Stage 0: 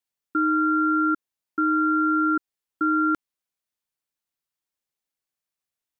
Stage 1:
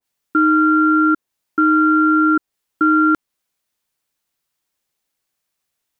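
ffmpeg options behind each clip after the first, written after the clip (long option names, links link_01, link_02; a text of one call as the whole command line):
ffmpeg -i in.wav -af "alimiter=limit=-18dB:level=0:latency=1:release=66,acontrast=72,adynamicequalizer=threshold=0.0282:dfrequency=1500:dqfactor=0.7:tfrequency=1500:tqfactor=0.7:attack=5:release=100:ratio=0.375:range=2:mode=cutabove:tftype=highshelf,volume=4.5dB" out.wav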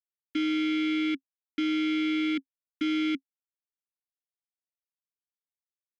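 ffmpeg -i in.wav -filter_complex "[0:a]aeval=exprs='0.447*(cos(1*acos(clip(val(0)/0.447,-1,1)))-cos(1*PI/2))+0.0708*(cos(3*acos(clip(val(0)/0.447,-1,1)))-cos(3*PI/2))+0.1*(cos(6*acos(clip(val(0)/0.447,-1,1)))-cos(6*PI/2))+0.00501*(cos(7*acos(clip(val(0)/0.447,-1,1)))-cos(7*PI/2))':channel_layout=same,aeval=exprs='val(0)*gte(abs(val(0)),0.0708)':channel_layout=same,asplit=3[link_01][link_02][link_03];[link_01]bandpass=frequency=270:width_type=q:width=8,volume=0dB[link_04];[link_02]bandpass=frequency=2290:width_type=q:width=8,volume=-6dB[link_05];[link_03]bandpass=frequency=3010:width_type=q:width=8,volume=-9dB[link_06];[link_04][link_05][link_06]amix=inputs=3:normalize=0,volume=-2dB" out.wav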